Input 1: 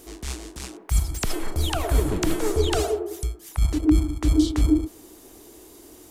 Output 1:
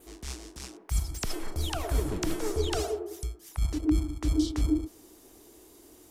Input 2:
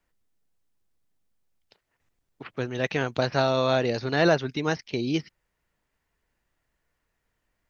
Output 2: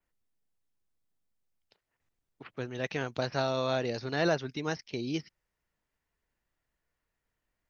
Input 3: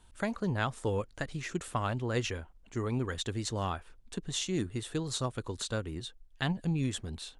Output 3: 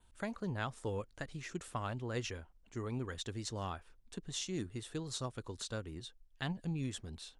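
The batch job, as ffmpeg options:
-af "adynamicequalizer=threshold=0.00282:dfrequency=5400:dqfactor=3.4:tfrequency=5400:tqfactor=3.4:attack=5:release=100:ratio=0.375:range=2.5:mode=boostabove:tftype=bell,volume=-7dB"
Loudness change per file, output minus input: -7.0, -7.0, -7.0 LU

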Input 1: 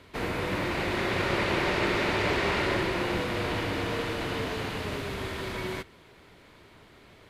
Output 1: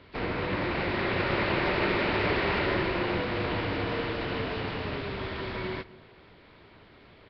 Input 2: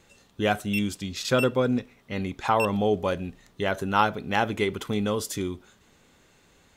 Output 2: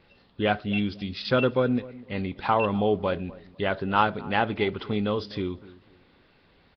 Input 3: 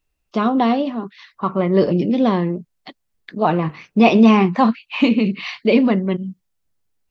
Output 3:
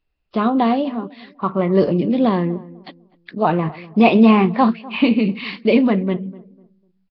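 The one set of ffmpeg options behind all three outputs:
-filter_complex "[0:a]asplit=2[a][b];[b]adelay=249,lowpass=f=960:p=1,volume=-18.5dB,asplit=2[c][d];[d]adelay=249,lowpass=f=960:p=1,volume=0.3,asplit=2[e][f];[f]adelay=249,lowpass=f=960:p=1,volume=0.3[g];[a][c][e][g]amix=inputs=4:normalize=0" -ar 11025 -c:a nellymoser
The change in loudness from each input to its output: 0.0, 0.0, 0.0 LU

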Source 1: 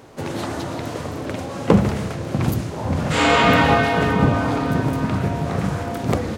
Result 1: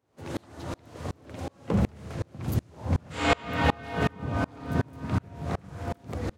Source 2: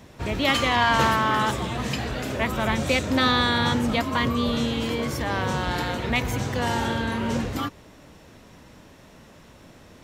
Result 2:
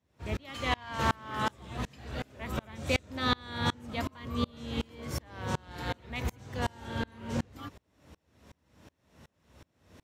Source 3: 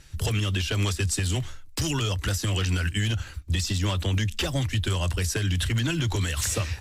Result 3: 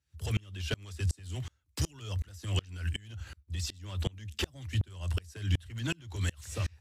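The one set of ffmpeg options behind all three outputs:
-af "highpass=f=56:w=0.5412,highpass=f=56:w=1.3066,equalizer=f=74:w=1.7:g=7.5,aeval=exprs='val(0)*pow(10,-32*if(lt(mod(-2.7*n/s,1),2*abs(-2.7)/1000),1-mod(-2.7*n/s,1)/(2*abs(-2.7)/1000),(mod(-2.7*n/s,1)-2*abs(-2.7)/1000)/(1-2*abs(-2.7)/1000))/20)':c=same,volume=-3dB"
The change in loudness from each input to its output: -10.5, -11.0, -9.5 LU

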